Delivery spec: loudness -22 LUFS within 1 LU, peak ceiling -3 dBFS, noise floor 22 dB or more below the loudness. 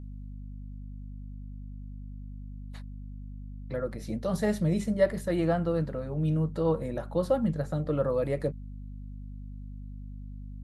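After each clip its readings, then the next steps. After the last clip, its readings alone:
hum 50 Hz; highest harmonic 250 Hz; hum level -38 dBFS; loudness -29.0 LUFS; peak level -13.0 dBFS; loudness target -22.0 LUFS
-> hum notches 50/100/150/200/250 Hz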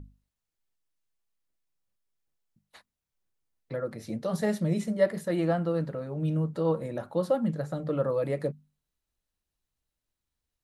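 hum not found; loudness -29.5 LUFS; peak level -12.5 dBFS; loudness target -22.0 LUFS
-> trim +7.5 dB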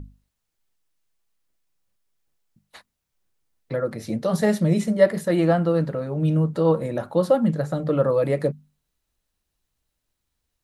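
loudness -22.0 LUFS; peak level -5.0 dBFS; noise floor -80 dBFS

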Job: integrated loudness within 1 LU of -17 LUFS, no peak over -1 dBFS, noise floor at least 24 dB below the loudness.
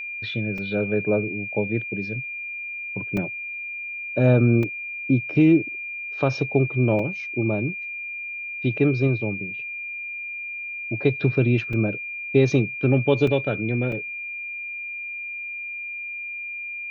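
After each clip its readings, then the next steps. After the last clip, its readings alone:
dropouts 7; longest dropout 3.3 ms; steady tone 2.4 kHz; tone level -30 dBFS; loudness -24.0 LUFS; peak level -6.0 dBFS; loudness target -17.0 LUFS
-> interpolate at 0.58/3.17/4.63/6.99/11.73/13.27/13.92 s, 3.3 ms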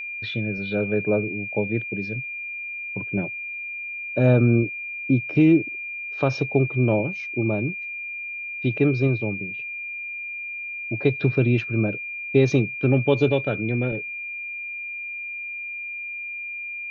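dropouts 0; steady tone 2.4 kHz; tone level -30 dBFS
-> band-stop 2.4 kHz, Q 30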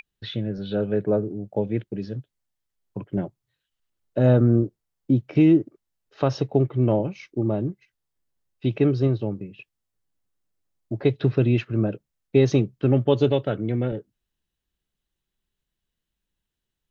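steady tone not found; loudness -23.5 LUFS; peak level -6.5 dBFS; loudness target -17.0 LUFS
-> trim +6.5 dB; peak limiter -1 dBFS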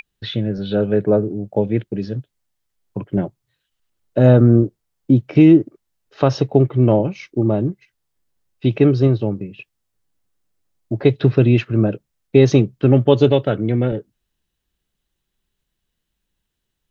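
loudness -17.0 LUFS; peak level -1.0 dBFS; noise floor -77 dBFS

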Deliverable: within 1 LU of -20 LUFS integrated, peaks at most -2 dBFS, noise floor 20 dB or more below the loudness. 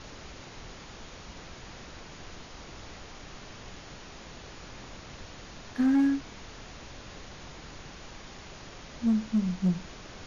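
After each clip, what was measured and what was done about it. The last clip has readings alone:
clipped samples 0.6%; clipping level -19.5 dBFS; noise floor -47 dBFS; noise floor target -48 dBFS; loudness -28.0 LUFS; peak level -19.5 dBFS; loudness target -20.0 LUFS
-> clip repair -19.5 dBFS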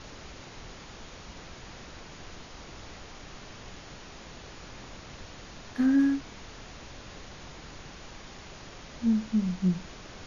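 clipped samples 0.0%; noise floor -47 dBFS; noise floor target -48 dBFS
-> noise print and reduce 6 dB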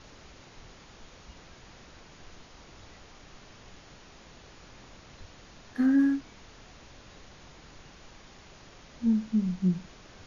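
noise floor -53 dBFS; loudness -27.5 LUFS; peak level -16.0 dBFS; loudness target -20.0 LUFS
-> trim +7.5 dB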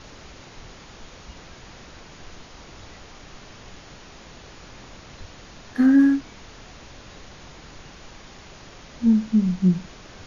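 loudness -20.0 LUFS; peak level -8.5 dBFS; noise floor -45 dBFS

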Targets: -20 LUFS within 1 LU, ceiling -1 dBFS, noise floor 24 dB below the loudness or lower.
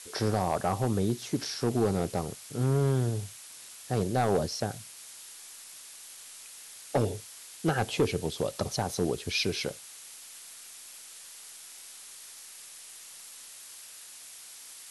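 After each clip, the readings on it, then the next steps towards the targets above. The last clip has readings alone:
clipped samples 0.5%; clipping level -18.5 dBFS; noise floor -48 dBFS; noise floor target -54 dBFS; loudness -30.0 LUFS; peak level -18.5 dBFS; loudness target -20.0 LUFS
-> clip repair -18.5 dBFS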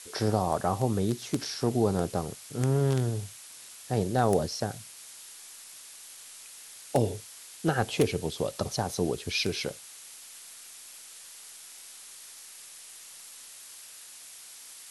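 clipped samples 0.0%; noise floor -48 dBFS; noise floor target -53 dBFS
-> noise print and reduce 6 dB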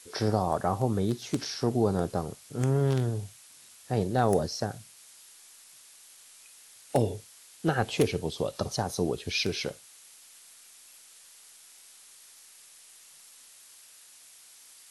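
noise floor -54 dBFS; loudness -29.5 LUFS; peak level -9.5 dBFS; loudness target -20.0 LUFS
-> trim +9.5 dB; peak limiter -1 dBFS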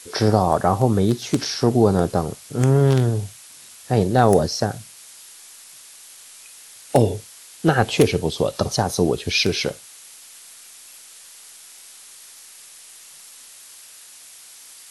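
loudness -20.0 LUFS; peak level -1.0 dBFS; noise floor -44 dBFS

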